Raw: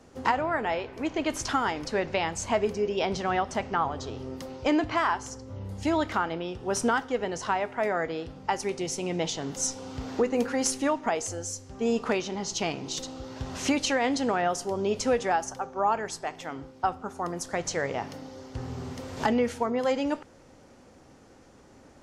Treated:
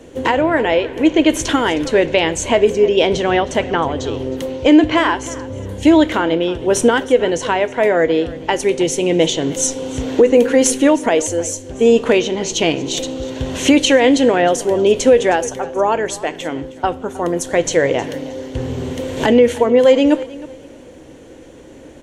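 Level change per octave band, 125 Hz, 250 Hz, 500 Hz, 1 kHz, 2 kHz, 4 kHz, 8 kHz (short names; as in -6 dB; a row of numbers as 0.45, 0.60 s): +10.5, +15.0, +15.5, +7.5, +11.5, +13.5, +11.0 dB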